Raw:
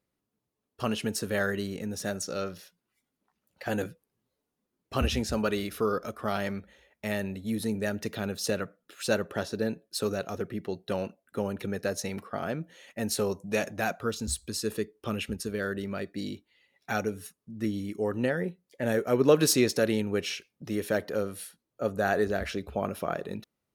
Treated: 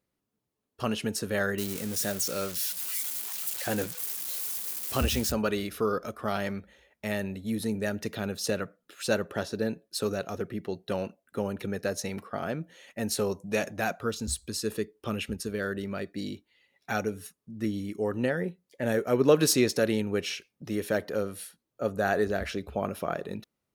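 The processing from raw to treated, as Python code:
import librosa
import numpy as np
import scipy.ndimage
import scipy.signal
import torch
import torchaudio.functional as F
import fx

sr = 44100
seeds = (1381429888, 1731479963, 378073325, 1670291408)

y = fx.crossing_spikes(x, sr, level_db=-25.0, at=(1.58, 5.32))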